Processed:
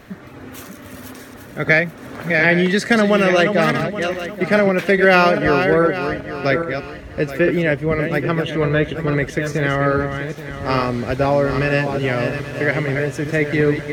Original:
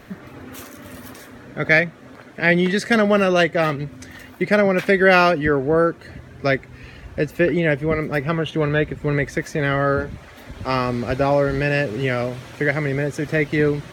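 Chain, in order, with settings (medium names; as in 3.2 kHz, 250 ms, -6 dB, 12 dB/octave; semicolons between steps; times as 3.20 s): backward echo that repeats 414 ms, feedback 51%, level -7 dB; 1.67–3.81 s: three bands compressed up and down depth 70%; trim +1 dB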